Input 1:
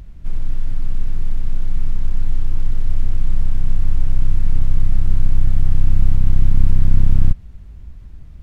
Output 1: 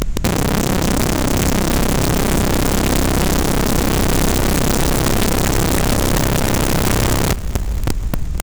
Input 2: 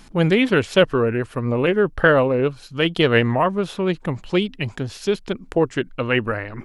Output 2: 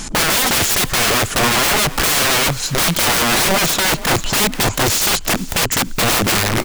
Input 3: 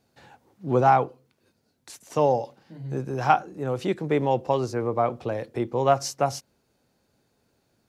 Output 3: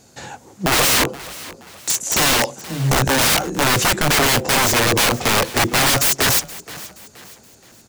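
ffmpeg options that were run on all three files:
ffmpeg -i in.wav -filter_complex "[0:a]equalizer=frequency=7000:width=1.8:gain=13.5,asplit=2[link_01][link_02];[link_02]acompressor=threshold=-21dB:ratio=6,volume=-2dB[link_03];[link_01][link_03]amix=inputs=2:normalize=0,alimiter=limit=-6dB:level=0:latency=1:release=59,acontrast=26,aeval=exprs='(mod(7.08*val(0)+1,2)-1)/7.08':channel_layout=same,asplit=4[link_04][link_05][link_06][link_07];[link_05]adelay=474,afreqshift=32,volume=-18dB[link_08];[link_06]adelay=948,afreqshift=64,volume=-25.7dB[link_09];[link_07]adelay=1422,afreqshift=96,volume=-33.5dB[link_10];[link_04][link_08][link_09][link_10]amix=inputs=4:normalize=0,volume=6.5dB" out.wav

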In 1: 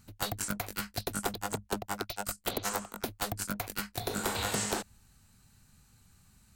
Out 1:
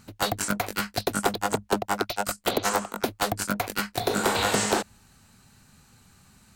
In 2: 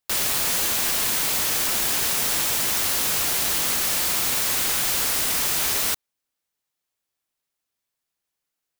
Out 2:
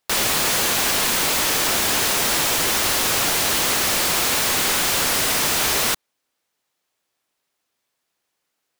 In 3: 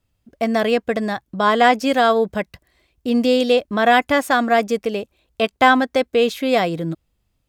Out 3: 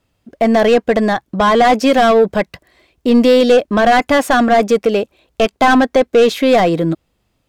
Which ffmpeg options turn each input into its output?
ffmpeg -i in.wav -filter_complex "[0:a]asplit=2[link_01][link_02];[link_02]highpass=frequency=720:poles=1,volume=21dB,asoftclip=type=tanh:threshold=-1dB[link_03];[link_01][link_03]amix=inputs=2:normalize=0,lowpass=frequency=6600:poles=1,volume=-6dB,tiltshelf=frequency=630:gain=5.5,volume=-1dB" out.wav

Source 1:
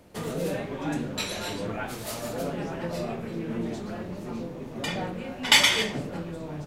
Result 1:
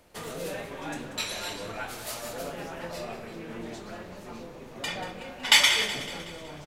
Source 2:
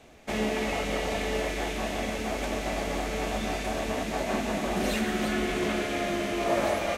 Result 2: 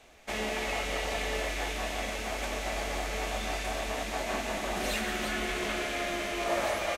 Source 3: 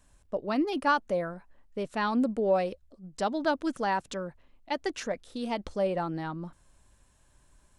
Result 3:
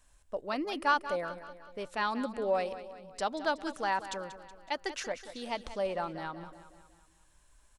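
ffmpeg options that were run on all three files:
ffmpeg -i in.wav -filter_complex "[0:a]equalizer=frequency=180:width=0.43:gain=-10.5,asplit=2[link_01][link_02];[link_02]aecho=0:1:186|372|558|744|930:0.224|0.116|0.0605|0.0315|0.0164[link_03];[link_01][link_03]amix=inputs=2:normalize=0" out.wav

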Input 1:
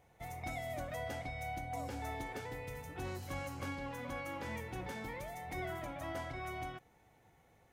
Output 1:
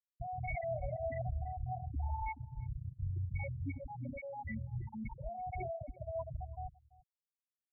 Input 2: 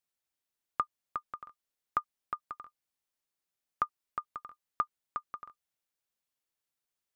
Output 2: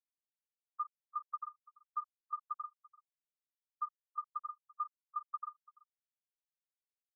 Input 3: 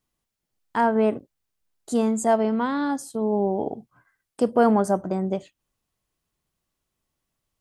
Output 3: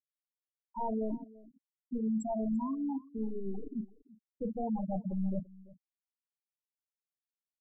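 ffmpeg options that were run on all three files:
ffmpeg -i in.wav -filter_complex "[0:a]asplit=2[link_01][link_02];[link_02]alimiter=limit=-19dB:level=0:latency=1:release=53,volume=-1.5dB[link_03];[link_01][link_03]amix=inputs=2:normalize=0,aeval=exprs='0.316*(abs(mod(val(0)/0.316+3,4)-2)-1)':channel_layout=same,areverse,acompressor=threshold=-28dB:ratio=8,areverse,aeval=exprs='val(0)+0.00398*(sin(2*PI*60*n/s)+sin(2*PI*2*60*n/s)/2+sin(2*PI*3*60*n/s)/3+sin(2*PI*4*60*n/s)/4+sin(2*PI*5*60*n/s)/5)':channel_layout=same,aeval=exprs='(tanh(63.1*val(0)+0.1)-tanh(0.1))/63.1':channel_layout=same,asplit=2[link_04][link_05];[link_05]adelay=41,volume=-8.5dB[link_06];[link_04][link_06]amix=inputs=2:normalize=0,adynamicequalizer=threshold=0.00141:dfrequency=430:dqfactor=2.5:tfrequency=430:tqfactor=2.5:attack=5:release=100:ratio=0.375:range=3:mode=cutabove:tftype=bell,afftfilt=real='re*gte(hypot(re,im),0.0562)':imag='im*gte(hypot(re,im),0.0562)':win_size=1024:overlap=0.75,lowshelf=frequency=75:gain=5.5,asplit=2[link_07][link_08];[link_08]adelay=338.2,volume=-21dB,highshelf=frequency=4000:gain=-7.61[link_09];[link_07][link_09]amix=inputs=2:normalize=0,volume=5dB" out.wav

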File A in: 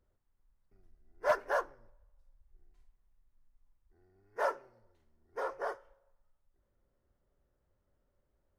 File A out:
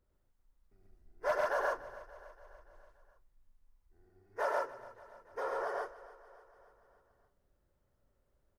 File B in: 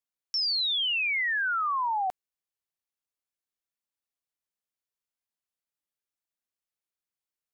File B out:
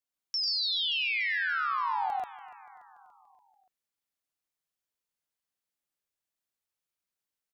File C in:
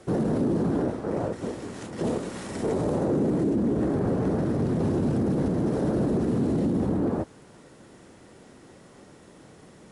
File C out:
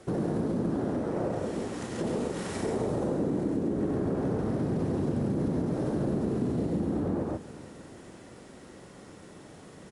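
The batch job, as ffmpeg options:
ffmpeg -i in.wav -filter_complex "[0:a]asplit=2[link_01][link_02];[link_02]aecho=0:1:96.21|137:0.631|0.794[link_03];[link_01][link_03]amix=inputs=2:normalize=0,acompressor=threshold=-27dB:ratio=2.5,asplit=2[link_04][link_05];[link_05]aecho=0:1:288|576|864|1152|1440:0.126|0.0743|0.0438|0.0259|0.0153[link_06];[link_04][link_06]amix=inputs=2:normalize=0,volume=-1.5dB" out.wav

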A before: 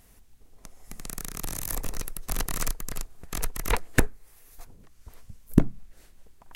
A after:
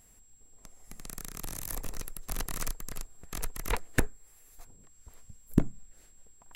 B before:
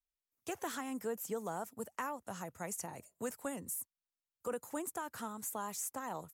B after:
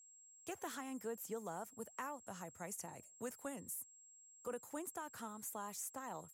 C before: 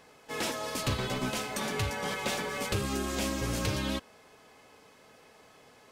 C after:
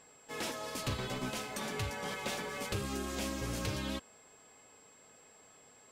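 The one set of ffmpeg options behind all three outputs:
ffmpeg -i in.wav -af "aeval=exprs='val(0)+0.00178*sin(2*PI*7600*n/s)':channel_layout=same,volume=-5.5dB" out.wav

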